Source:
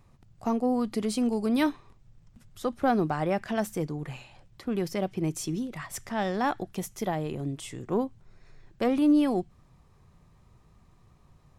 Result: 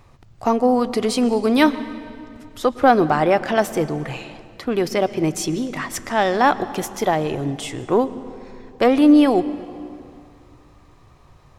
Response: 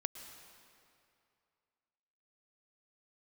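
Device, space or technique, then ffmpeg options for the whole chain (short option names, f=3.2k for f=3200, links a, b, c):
filtered reverb send: -filter_complex "[0:a]asplit=2[a][b];[b]highpass=f=180:w=0.5412,highpass=f=180:w=1.3066,lowpass=6.8k[c];[1:a]atrim=start_sample=2205[d];[c][d]afir=irnorm=-1:irlink=0,volume=-2.5dB[e];[a][e]amix=inputs=2:normalize=0,volume=8dB"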